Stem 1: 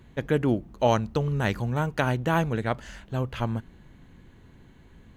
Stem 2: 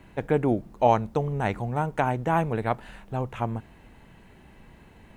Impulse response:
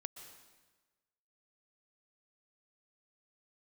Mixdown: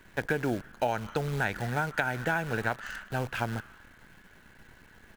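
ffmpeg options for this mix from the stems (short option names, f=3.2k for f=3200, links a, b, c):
-filter_complex "[0:a]highpass=f=1.5k:t=q:w=4.9,volume=-6dB,asplit=2[a][b];[b]volume=-3dB[c];[1:a]acrusher=bits=7:dc=4:mix=0:aa=0.000001,adelay=1.2,volume=-2.5dB[d];[2:a]atrim=start_sample=2205[e];[c][e]afir=irnorm=-1:irlink=0[f];[a][d][f]amix=inputs=3:normalize=0,acompressor=threshold=-24dB:ratio=10"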